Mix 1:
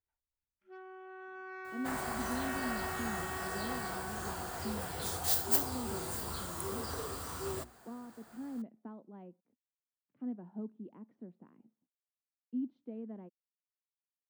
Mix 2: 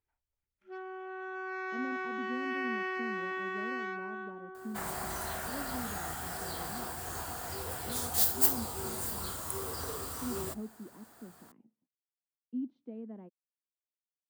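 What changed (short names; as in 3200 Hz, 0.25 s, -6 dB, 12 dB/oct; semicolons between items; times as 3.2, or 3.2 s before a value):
first sound +7.0 dB; second sound: entry +2.90 s; master: add bell 15000 Hz +6.5 dB 1.2 oct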